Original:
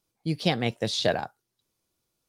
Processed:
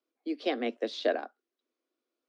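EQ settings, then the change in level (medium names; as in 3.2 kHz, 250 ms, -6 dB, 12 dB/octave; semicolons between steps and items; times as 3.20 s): steep high-pass 240 Hz 96 dB/octave; tape spacing loss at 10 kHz 28 dB; peaking EQ 880 Hz -11.5 dB 0.26 oct; 0.0 dB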